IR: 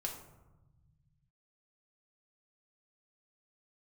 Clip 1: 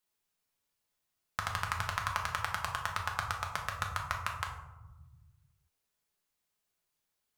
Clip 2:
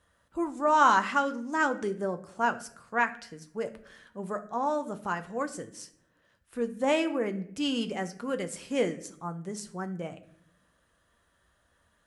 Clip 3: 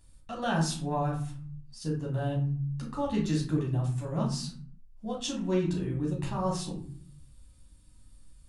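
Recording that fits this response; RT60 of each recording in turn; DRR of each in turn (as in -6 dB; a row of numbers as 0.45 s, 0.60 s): 1; 1.1 s, 0.70 s, 0.50 s; 0.5 dB, 7.5 dB, -3.5 dB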